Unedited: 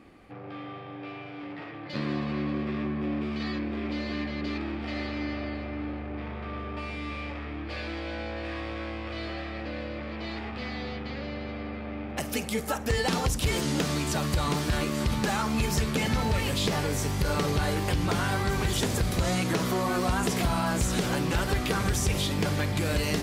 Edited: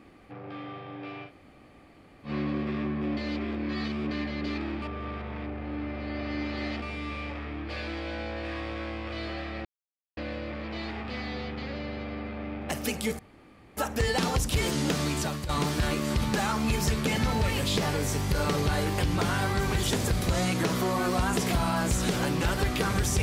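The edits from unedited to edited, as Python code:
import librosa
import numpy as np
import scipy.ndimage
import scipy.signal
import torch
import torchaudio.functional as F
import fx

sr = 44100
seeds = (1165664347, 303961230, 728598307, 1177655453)

y = fx.edit(x, sr, fx.room_tone_fill(start_s=1.28, length_s=1.0, crossfade_s=0.1),
    fx.reverse_span(start_s=3.17, length_s=0.94),
    fx.reverse_span(start_s=4.82, length_s=2.0),
    fx.insert_silence(at_s=9.65, length_s=0.52),
    fx.insert_room_tone(at_s=12.67, length_s=0.58),
    fx.fade_out_to(start_s=14.07, length_s=0.32, floor_db=-11.5), tone=tone)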